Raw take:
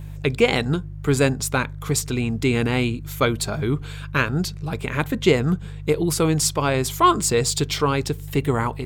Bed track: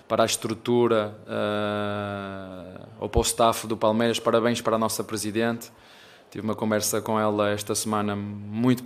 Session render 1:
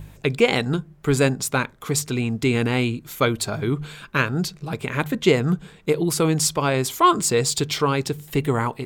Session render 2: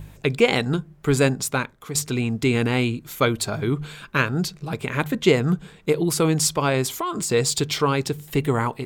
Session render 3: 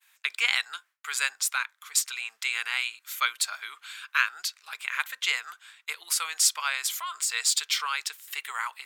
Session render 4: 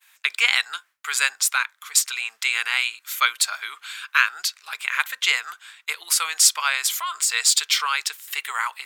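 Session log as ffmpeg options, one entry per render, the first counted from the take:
-af "bandreject=f=50:t=h:w=4,bandreject=f=100:t=h:w=4,bandreject=f=150:t=h:w=4"
-filter_complex "[0:a]asettb=1/sr,asplit=3[a][b][c];[a]atrim=end=6.864[d];[b]atrim=start=6.86:end=7.3,asetpts=PTS-STARTPTS,afade=t=in:d=0.004:c=qsin,afade=t=out:st=0.436:d=0.004:c=qsin,acompressor=threshold=-22dB:ratio=16:attack=3.2:release=140:knee=1:detection=peak[e];[c]atrim=start=7.296[f];[d][e]acrossfade=d=0.004:c1=hsin:c2=qsin[g];[g][f]acrossfade=d=0.004:c1=qsin:c2=hsin,asplit=2[h][i];[h]atrim=end=1.95,asetpts=PTS-STARTPTS,afade=t=out:st=1.41:d=0.54:silence=0.375837[j];[i]atrim=start=1.95,asetpts=PTS-STARTPTS,afade=t=in:d=0.004:c=hsin:silence=0.375837[k];[j][k]concat=n=2:v=0:a=1"
-af "highpass=f=1.3k:w=0.5412,highpass=f=1.3k:w=1.3066,agate=range=-33dB:threshold=-51dB:ratio=3:detection=peak"
-af "volume=6.5dB,alimiter=limit=-2dB:level=0:latency=1"

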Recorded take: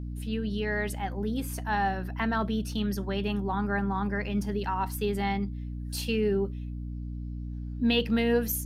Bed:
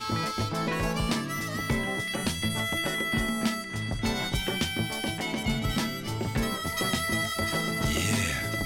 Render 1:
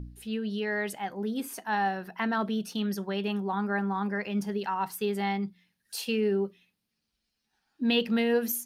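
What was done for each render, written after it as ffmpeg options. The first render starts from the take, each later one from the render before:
-af "bandreject=f=60:t=h:w=4,bandreject=f=120:t=h:w=4,bandreject=f=180:t=h:w=4,bandreject=f=240:t=h:w=4,bandreject=f=300:t=h:w=4"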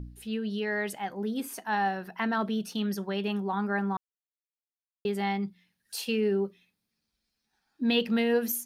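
-filter_complex "[0:a]asettb=1/sr,asplit=3[a][b][c];[a]atrim=end=6.404[d];[b]atrim=start=6.4:end=7.95,asetpts=PTS-STARTPTS,afade=t=in:d=0.004:c=qsin,afade=t=out:st=1.546:d=0.004:c=qsin,bandreject=f=2.9k:w=9.5[e];[c]atrim=start=7.946[f];[d][e]acrossfade=d=0.004:c1=hsin:c2=qsin[g];[g][f]acrossfade=d=0.004:c1=qsin:c2=hsin,asplit=3[h][i][j];[h]atrim=end=3.97,asetpts=PTS-STARTPTS,afade=t=out:st=3.966:d=0.004:c=hsin[k];[i]atrim=start=3.97:end=5.05,asetpts=PTS-STARTPTS,volume=0[l];[j]atrim=start=5.05,asetpts=PTS-STARTPTS,afade=t=in:d=0.004:c=hsin[m];[k][l][m]concat=n=3:v=0:a=1"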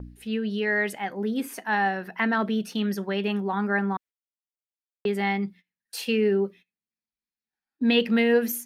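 -af "agate=range=-21dB:threshold=-48dB:ratio=16:detection=peak,equalizer=f=250:t=o:w=1:g=4,equalizer=f=500:t=o:w=1:g=4,equalizer=f=2k:t=o:w=1:g=8"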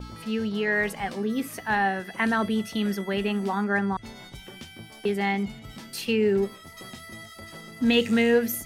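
-filter_complex "[1:a]volume=-14dB[a];[0:a][a]amix=inputs=2:normalize=0"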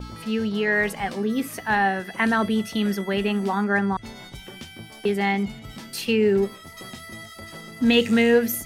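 -af "volume=3dB"

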